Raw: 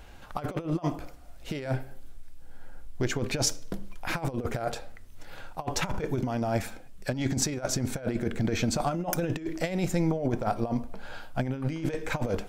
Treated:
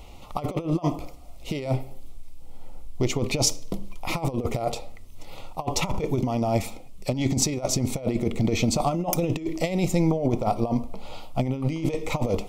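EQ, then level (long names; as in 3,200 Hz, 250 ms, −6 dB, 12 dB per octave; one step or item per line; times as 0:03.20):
Butterworth band-reject 1,600 Hz, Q 2
+4.5 dB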